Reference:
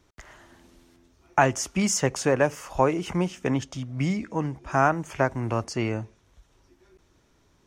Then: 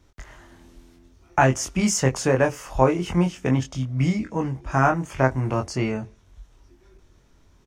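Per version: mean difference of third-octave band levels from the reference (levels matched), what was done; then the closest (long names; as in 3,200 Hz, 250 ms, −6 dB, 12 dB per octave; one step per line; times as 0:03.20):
2.0 dB: low-shelf EQ 100 Hz +10.5 dB
double-tracking delay 23 ms −4 dB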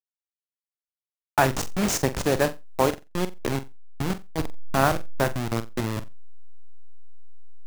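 11.5 dB: hold until the input has moved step −20 dBFS
on a send: flutter between parallel walls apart 7.6 metres, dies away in 0.22 s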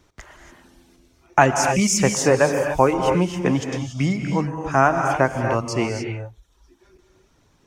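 5.5 dB: reverb reduction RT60 1.1 s
reverb whose tail is shaped and stops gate 310 ms rising, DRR 4 dB
level +5 dB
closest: first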